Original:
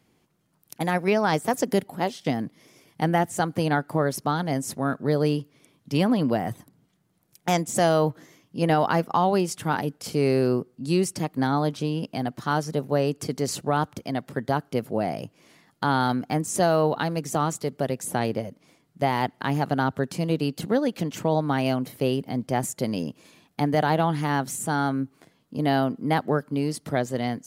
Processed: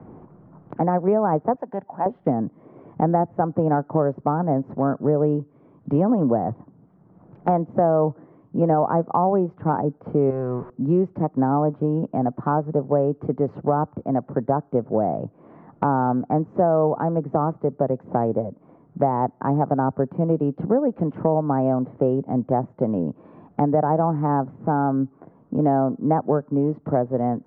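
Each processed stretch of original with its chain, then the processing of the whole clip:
1.56–2.06 HPF 1300 Hz 6 dB/oct + comb 1.2 ms, depth 42%
10.3–10.7 zero-crossing step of -34.5 dBFS + bell 310 Hz -12.5 dB 2 oct
whole clip: LPF 1100 Hz 24 dB/oct; dynamic EQ 560 Hz, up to +3 dB, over -30 dBFS, Q 1.1; three-band squash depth 70%; gain +2 dB

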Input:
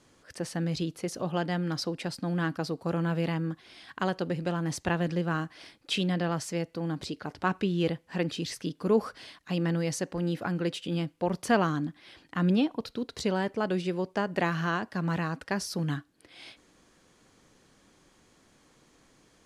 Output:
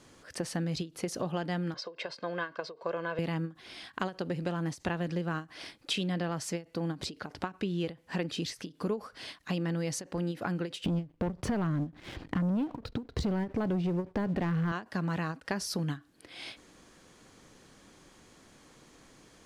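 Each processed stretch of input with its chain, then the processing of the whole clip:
1.74–3.19 HPF 440 Hz + air absorption 170 m + comb 1.9 ms, depth 64%
10.84–14.72 RIAA curve playback + compressor 2:1, threshold -29 dBFS + sample leveller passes 2
whole clip: compressor 4:1, threshold -35 dBFS; ending taper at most 250 dB/s; gain +4.5 dB

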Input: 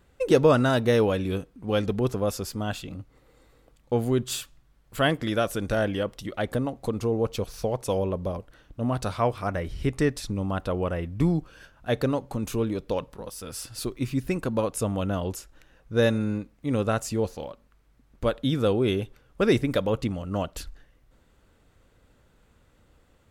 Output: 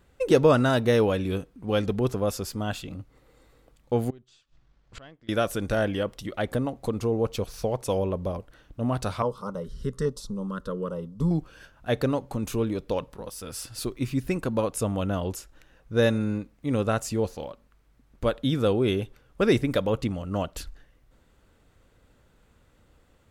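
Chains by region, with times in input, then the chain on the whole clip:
4.1–5.29 half-wave gain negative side -3 dB + LPF 6300 Hz 24 dB/oct + flipped gate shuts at -29 dBFS, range -25 dB
9.22–11.31 high shelf 9600 Hz -9 dB + LFO notch square 1.2 Hz 790–1700 Hz + fixed phaser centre 470 Hz, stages 8
whole clip: dry

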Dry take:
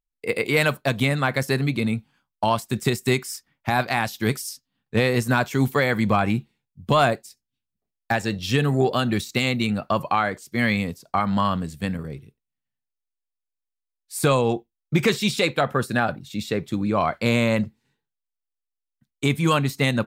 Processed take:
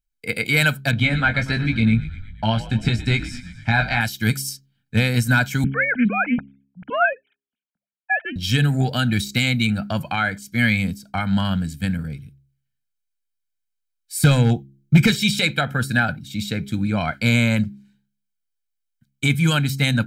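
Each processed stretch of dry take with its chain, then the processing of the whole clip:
0.91–4.01 LPF 3800 Hz + doubler 18 ms -5.5 dB + frequency-shifting echo 0.119 s, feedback 62%, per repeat -69 Hz, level -15.5 dB
5.64–8.36 sine-wave speech + Doppler distortion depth 0.16 ms
14.2–15.11 low shelf 300 Hz +7 dB + hard clip -9.5 dBFS
whole clip: band shelf 760 Hz -10 dB 1.3 oct; comb 1.3 ms, depth 79%; de-hum 67.88 Hz, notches 6; gain +2 dB

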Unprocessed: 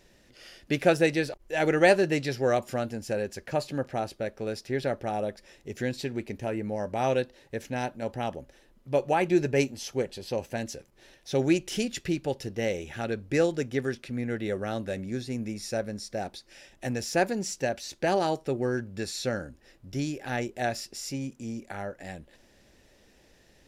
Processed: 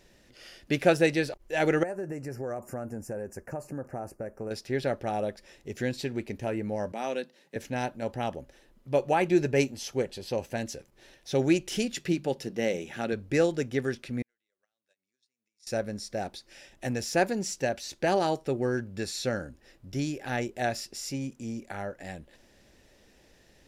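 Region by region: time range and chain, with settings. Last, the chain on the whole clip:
1.83–4.51 bell 2800 Hz +12.5 dB 0.22 oct + compressor 5:1, threshold -31 dBFS + Butterworth band-stop 3400 Hz, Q 0.6
6.92–7.56 rippled Chebyshev high-pass 150 Hz, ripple 3 dB + bell 600 Hz -6.5 dB 2.1 oct
11.96–13.13 resonant low shelf 120 Hz -10 dB, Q 1.5 + notches 50/100/150/200 Hz
14.22–15.67 weighting filter ITU-R 468 + compressor, threshold -41 dBFS + gate -41 dBFS, range -43 dB
whole clip: dry

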